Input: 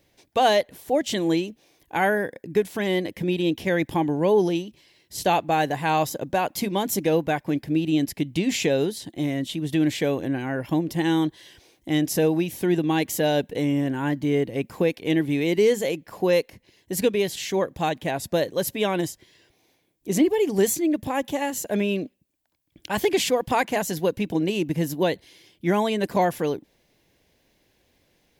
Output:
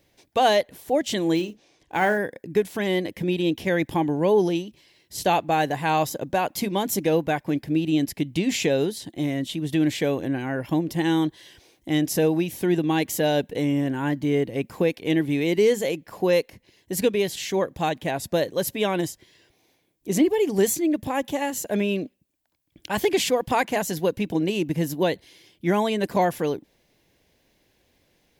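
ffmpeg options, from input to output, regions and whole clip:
ffmpeg -i in.wav -filter_complex "[0:a]asettb=1/sr,asplit=3[link_01][link_02][link_03];[link_01]atrim=end=1.354[link_04];[link_02]atrim=start=1.35:end=2.18,asetpts=PTS-STARTPTS,afade=type=in:duration=0.004:curve=qsin,afade=type=out:start_time=0.826:duration=0.004:curve=qsin,lowpass=frequency=7900:width=0.5412,lowpass=frequency=7900:width=1.3066,asplit=2[link_05][link_06];[link_06]adelay=44,volume=-13dB[link_07];[link_05][link_07]amix=inputs=2:normalize=0,atrim=end_sample=36603,acrusher=bits=7:mode=log:mix=0:aa=0.000001[link_08];[link_03]atrim=start=2.176[link_09];[link_04][link_08]acrossfade=duration=0.004:curve1=hsin:curve2=qsin[link_10];[link_10][link_09]acrossfade=duration=0.004:curve1=qsin:curve2=hsin" out.wav

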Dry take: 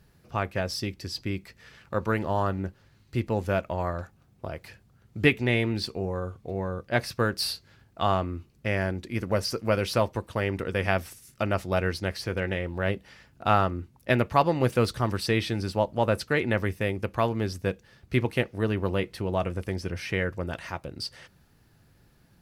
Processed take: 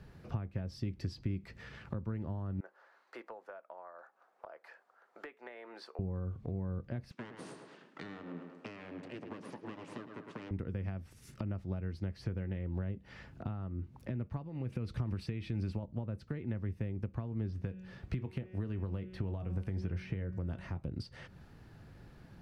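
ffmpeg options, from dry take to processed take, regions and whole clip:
ffmpeg -i in.wav -filter_complex "[0:a]asettb=1/sr,asplit=3[link_01][link_02][link_03];[link_01]atrim=end=2.604[link_04];[link_02]atrim=start=2.6:end=5.99,asetpts=PTS-STARTPTS,afade=type=in:duration=0.004:curve=qsin,afade=type=out:start_time=3.386:duration=0.004:curve=qsin,highpass=frequency=580:width=0.5412,highpass=frequency=580:width=1.3066,highshelf=frequency=2000:width_type=q:width=1.5:gain=-8[link_05];[link_03]atrim=start=5.986[link_06];[link_04][link_05]acrossfade=duration=0.004:curve1=hsin:curve2=qsin[link_07];[link_07][link_06]acrossfade=duration=0.004:curve1=qsin:curve2=hsin,asettb=1/sr,asplit=3[link_08][link_09][link_10];[link_08]atrim=end=7.114[link_11];[link_09]atrim=start=7.11:end=10.51,asetpts=PTS-STARTPTS,afade=type=in:duration=0.004:curve=qsin,afade=type=out:start_time=3.396:duration=0.004:curve=qsin,aeval=exprs='abs(val(0))':channel_layout=same,highpass=frequency=200:width=0.5412,highpass=frequency=200:width=1.3066,equalizer=frequency=210:width_type=q:width=4:gain=-5,equalizer=frequency=720:width_type=q:width=4:gain=-4,equalizer=frequency=2700:width_type=q:width=4:gain=3,lowpass=frequency=9600:width=0.5412,lowpass=frequency=9600:width=1.3066,asplit=2[link_12][link_13];[link_13]adelay=106,lowpass=frequency=3500:poles=1,volume=-10.5dB,asplit=2[link_14][link_15];[link_15]adelay=106,lowpass=frequency=3500:poles=1,volume=0.38,asplit=2[link_16][link_17];[link_17]adelay=106,lowpass=frequency=3500:poles=1,volume=0.38,asplit=2[link_18][link_19];[link_19]adelay=106,lowpass=frequency=3500:poles=1,volume=0.38[link_20];[link_12][link_14][link_16][link_18][link_20]amix=inputs=5:normalize=0,atrim=end_sample=149940[link_21];[link_10]atrim=start=10.506[link_22];[link_11][link_21]acrossfade=duration=0.004:curve1=hsin:curve2=qsin[link_23];[link_23][link_22]acrossfade=duration=0.004:curve1=qsin:curve2=hsin,asettb=1/sr,asplit=3[link_24][link_25][link_26];[link_24]atrim=end=14.454[link_27];[link_25]atrim=start=14.45:end=15.83,asetpts=PTS-STARTPTS,afade=type=in:duration=0.004:curve=qsin,afade=type=out:start_time=1.376:duration=0.004:curve=qsin,equalizer=frequency=2400:width=3.7:gain=7,acompressor=threshold=-26dB:ratio=3:attack=3.2:release=140:knee=1:detection=peak[link_28];[link_26]atrim=start=15.826[link_29];[link_27][link_28]acrossfade=duration=0.004:curve1=hsin:curve2=qsin[link_30];[link_30][link_29]acrossfade=duration=0.004:curve1=qsin:curve2=hsin,asettb=1/sr,asplit=3[link_31][link_32][link_33];[link_31]atrim=end=17.504[link_34];[link_32]atrim=start=17.5:end=20.77,asetpts=PTS-STARTPTS,afade=type=in:duration=0.004:curve=qsin,afade=type=out:start_time=3.266:duration=0.004:curve=qsin,bandreject=frequency=185.9:width_type=h:width=4,bandreject=frequency=371.8:width_type=h:width=4,bandreject=frequency=557.7:width_type=h:width=4,bandreject=frequency=743.6:width_type=h:width=4,bandreject=frequency=929.5:width_type=h:width=4,bandreject=frequency=1115.4:width_type=h:width=4,bandreject=frequency=1301.3:width_type=h:width=4,bandreject=frequency=1487.2:width_type=h:width=4,bandreject=frequency=1673.1:width_type=h:width=4,bandreject=frequency=1859:width_type=h:width=4,bandreject=frequency=2044.9:width_type=h:width=4,bandreject=frequency=2230.8:width_type=h:width=4,bandreject=frequency=2416.7:width_type=h:width=4,bandreject=frequency=2602.6:width_type=h:width=4,bandreject=frequency=2788.5:width_type=h:width=4,bandreject=frequency=2974.4:width_type=h:width=4,bandreject=frequency=3160.3:width_type=h:width=4,bandreject=frequency=3346.2:width_type=h:width=4,bandreject=frequency=3532.1:width_type=h:width=4,acrossover=split=910|4200[link_35][link_36][link_37];[link_35]acompressor=threshold=-35dB:ratio=4[link_38];[link_36]acompressor=threshold=-43dB:ratio=4[link_39];[link_37]acompressor=threshold=-56dB:ratio=4[link_40];[link_38][link_39][link_40]amix=inputs=3:normalize=0,asplit=2[link_41][link_42];[link_42]adelay=22,volume=-14dB[link_43];[link_41][link_43]amix=inputs=2:normalize=0,atrim=end_sample=144207[link_44];[link_33]atrim=start=20.766[link_45];[link_34][link_44]acrossfade=duration=0.004:curve1=hsin:curve2=qsin[link_46];[link_46][link_45]acrossfade=duration=0.004:curve1=qsin:curve2=hsin,acompressor=threshold=-36dB:ratio=6,aemphasis=mode=reproduction:type=75kf,acrossover=split=260[link_47][link_48];[link_48]acompressor=threshold=-55dB:ratio=6[link_49];[link_47][link_49]amix=inputs=2:normalize=0,volume=6dB" out.wav

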